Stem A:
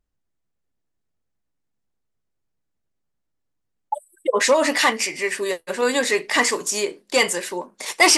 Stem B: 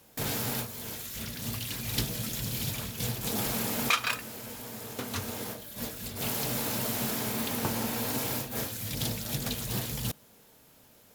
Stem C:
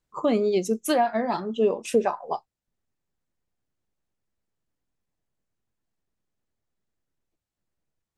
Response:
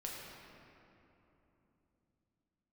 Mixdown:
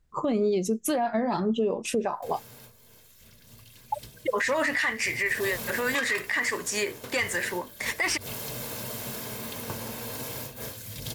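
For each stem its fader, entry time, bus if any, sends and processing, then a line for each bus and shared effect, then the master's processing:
-6.5 dB, 0.00 s, bus A, no send, peaking EQ 1.8 kHz +14 dB 0.87 oct
4.78 s -17 dB -> 5.53 s -4.5 dB, 2.05 s, no bus, no send, comb 1.9 ms, depth 34%
+2.5 dB, 0.00 s, bus A, no send, none
bus A: 0.0 dB, bass shelf 170 Hz +11.5 dB; compression, threshold -19 dBFS, peak gain reduction 11.5 dB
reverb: none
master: peak limiter -17.5 dBFS, peak gain reduction 8.5 dB

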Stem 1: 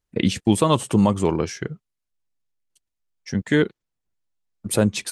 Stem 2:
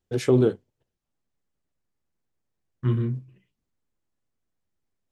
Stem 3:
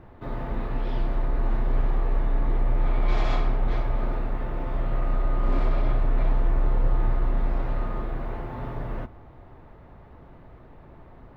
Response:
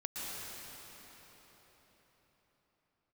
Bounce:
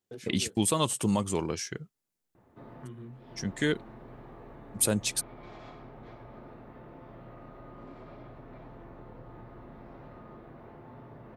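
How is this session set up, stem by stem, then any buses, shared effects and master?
-10.0 dB, 0.10 s, no bus, no send, treble shelf 2.7 kHz +8.5 dB
-3.5 dB, 0.00 s, bus A, no send, none
-13.0 dB, 2.35 s, bus A, no send, tilt EQ -1.5 dB/octave
bus A: 0.0 dB, high-pass 150 Hz 12 dB/octave; compression 4:1, threshold -44 dBFS, peak gain reduction 21 dB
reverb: none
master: treble shelf 7.1 kHz +6 dB

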